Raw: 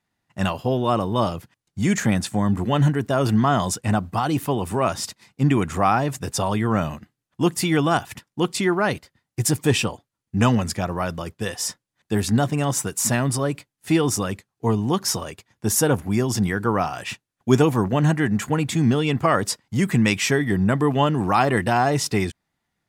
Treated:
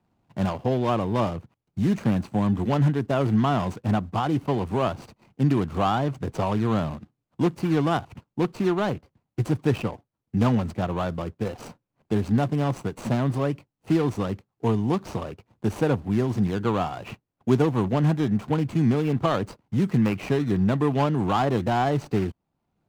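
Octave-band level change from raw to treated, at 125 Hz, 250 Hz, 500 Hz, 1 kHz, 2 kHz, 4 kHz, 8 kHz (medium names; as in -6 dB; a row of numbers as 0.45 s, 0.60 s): -2.0 dB, -2.0 dB, -2.5 dB, -4.5 dB, -9.0 dB, -9.5 dB, -21.0 dB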